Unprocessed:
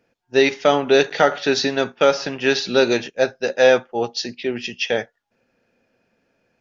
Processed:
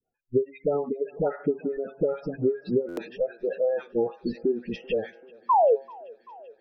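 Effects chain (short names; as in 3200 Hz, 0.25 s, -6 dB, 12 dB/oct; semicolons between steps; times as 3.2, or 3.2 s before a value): bell 410 Hz +11.5 dB 0.39 oct; dispersion highs, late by 0.104 s, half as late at 1100 Hz; compressor 16:1, threshold -20 dBFS, peak gain reduction 20 dB; tilt -4.5 dB/oct; painted sound fall, 5.49–5.76, 400–1100 Hz -13 dBFS; de-hum 135.1 Hz, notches 17; spectral gate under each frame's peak -25 dB strong; spectral noise reduction 26 dB; on a send: thinning echo 0.388 s, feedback 82%, high-pass 270 Hz, level -23.5 dB; on the sum: stuck buffer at 2.88, samples 512, times 7; gain -5 dB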